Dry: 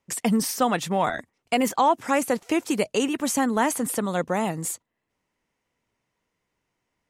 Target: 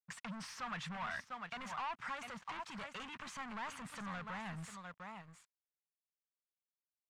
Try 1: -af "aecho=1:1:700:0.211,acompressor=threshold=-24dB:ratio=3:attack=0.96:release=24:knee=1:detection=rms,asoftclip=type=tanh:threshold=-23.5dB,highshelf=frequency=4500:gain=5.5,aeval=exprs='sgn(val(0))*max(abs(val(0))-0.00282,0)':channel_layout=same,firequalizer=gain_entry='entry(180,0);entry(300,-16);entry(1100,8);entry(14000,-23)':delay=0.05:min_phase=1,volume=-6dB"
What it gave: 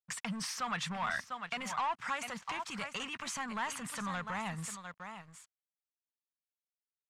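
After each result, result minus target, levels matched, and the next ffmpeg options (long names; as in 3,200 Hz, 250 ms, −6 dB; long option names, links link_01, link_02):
soft clipping: distortion −9 dB; 8,000 Hz band +5.5 dB
-af "aecho=1:1:700:0.211,acompressor=threshold=-24dB:ratio=3:attack=0.96:release=24:knee=1:detection=rms,asoftclip=type=tanh:threshold=-33dB,highshelf=frequency=4500:gain=5.5,aeval=exprs='sgn(val(0))*max(abs(val(0))-0.00282,0)':channel_layout=same,firequalizer=gain_entry='entry(180,0);entry(300,-16);entry(1100,8);entry(14000,-23)':delay=0.05:min_phase=1,volume=-6dB"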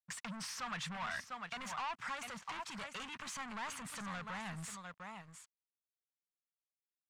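8,000 Hz band +6.0 dB
-af "aecho=1:1:700:0.211,acompressor=threshold=-24dB:ratio=3:attack=0.96:release=24:knee=1:detection=rms,asoftclip=type=tanh:threshold=-33dB,highshelf=frequency=4500:gain=-3.5,aeval=exprs='sgn(val(0))*max(abs(val(0))-0.00282,0)':channel_layout=same,firequalizer=gain_entry='entry(180,0);entry(300,-16);entry(1100,8);entry(14000,-23)':delay=0.05:min_phase=1,volume=-6dB"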